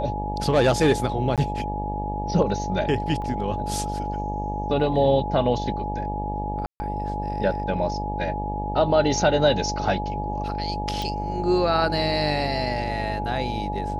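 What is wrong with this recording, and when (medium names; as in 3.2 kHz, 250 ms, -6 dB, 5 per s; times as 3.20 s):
buzz 50 Hz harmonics 19 -30 dBFS
whine 840 Hz -29 dBFS
1.36–1.38 s: dropout 17 ms
3.22 s: dropout 2.3 ms
6.66–6.80 s: dropout 140 ms
11.02 s: pop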